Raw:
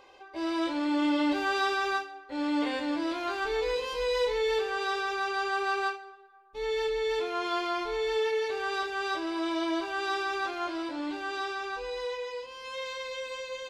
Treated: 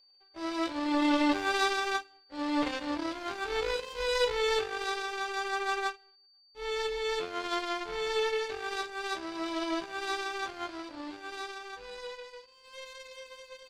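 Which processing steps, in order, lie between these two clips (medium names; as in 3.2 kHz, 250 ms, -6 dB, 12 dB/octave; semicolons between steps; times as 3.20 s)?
power-law waveshaper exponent 2; whistle 4.6 kHz -66 dBFS; trim +5.5 dB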